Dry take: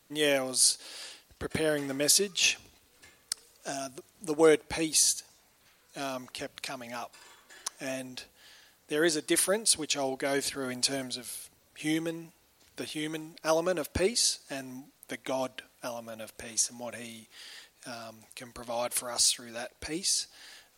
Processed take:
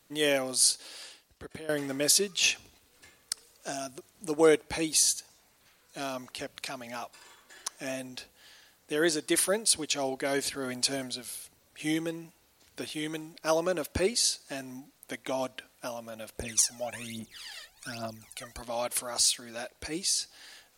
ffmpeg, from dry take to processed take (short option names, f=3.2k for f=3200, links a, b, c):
-filter_complex "[0:a]asettb=1/sr,asplit=3[a][b][c];[a]atrim=end=16.384[d];[b]atrim=start=16.38:end=18.62,asetpts=PTS-STARTPTS,afade=t=in:d=0.004:c=qsin,afade=t=out:st=2.236:d=0.004:c=qsin,aphaser=in_gain=1:out_gain=1:delay=1.7:decay=0.76:speed=1.2:type=triangular[e];[c]atrim=start=18.616[f];[d][e]acrossfade=d=0.004:c1=hsin:c2=qsin[g];[g][f]acrossfade=d=0.004:c1=qsin:c2=hsin,asplit=2[h][i];[h]atrim=end=1.69,asetpts=PTS-STARTPTS,afade=t=out:st=0.79:d=0.9:silence=0.149624[j];[i]atrim=start=1.69,asetpts=PTS-STARTPTS,afade=t=in:d=0.004:c=hsin:silence=0.149624[k];[j][k]concat=n=2:v=0:a=1"